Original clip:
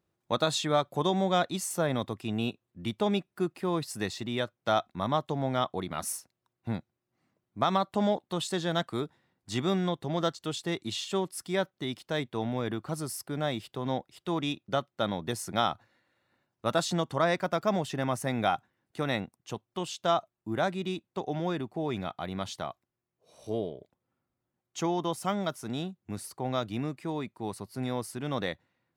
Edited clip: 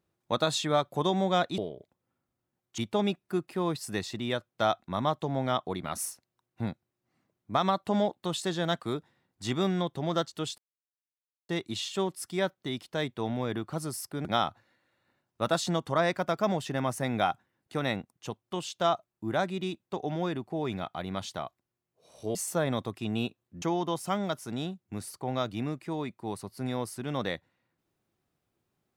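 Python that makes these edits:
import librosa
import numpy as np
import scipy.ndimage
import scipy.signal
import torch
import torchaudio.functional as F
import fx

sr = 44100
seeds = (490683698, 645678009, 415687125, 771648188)

y = fx.edit(x, sr, fx.swap(start_s=1.58, length_s=1.27, other_s=23.59, other_length_s=1.2),
    fx.insert_silence(at_s=10.65, length_s=0.91),
    fx.cut(start_s=13.41, length_s=2.08), tone=tone)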